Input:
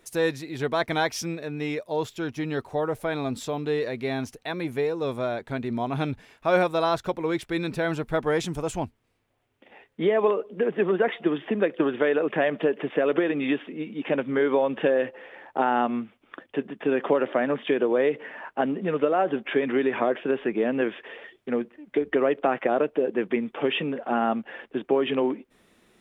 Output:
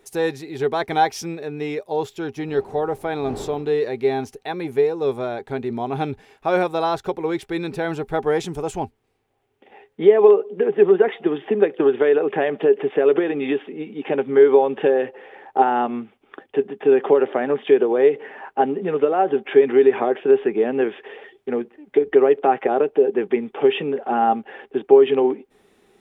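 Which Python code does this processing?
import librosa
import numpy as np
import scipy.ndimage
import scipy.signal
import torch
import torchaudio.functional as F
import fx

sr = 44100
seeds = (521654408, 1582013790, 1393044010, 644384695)

y = fx.dmg_wind(x, sr, seeds[0], corner_hz=470.0, level_db=-42.0, at=(2.47, 3.72), fade=0.02)
y = fx.small_body(y, sr, hz=(410.0, 790.0), ring_ms=65, db=13)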